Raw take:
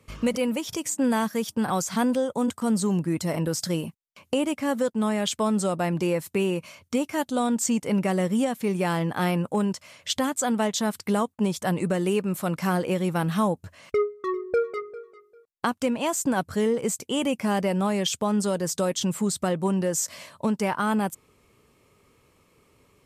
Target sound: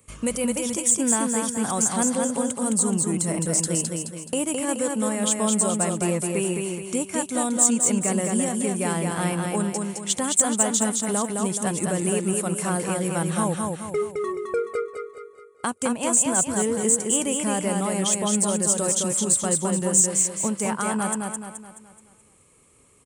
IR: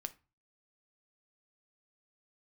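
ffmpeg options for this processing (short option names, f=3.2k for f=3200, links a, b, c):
-af "aresample=22050,aresample=44100,aexciter=amount=4.9:drive=8.6:freq=7.2k,aecho=1:1:213|426|639|852|1065|1278:0.668|0.294|0.129|0.0569|0.0251|0.011,volume=-2dB"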